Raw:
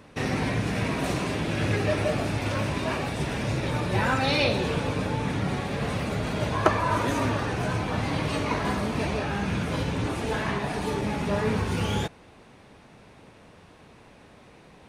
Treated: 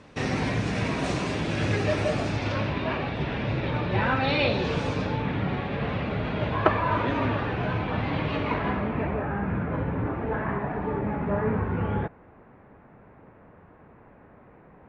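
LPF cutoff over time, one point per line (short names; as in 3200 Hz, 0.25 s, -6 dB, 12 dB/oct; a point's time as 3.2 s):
LPF 24 dB/oct
2.21 s 7900 Hz
2.78 s 3700 Hz
4.43 s 3700 Hz
4.87 s 7800 Hz
5.26 s 3400 Hz
8.47 s 3400 Hz
9.23 s 1800 Hz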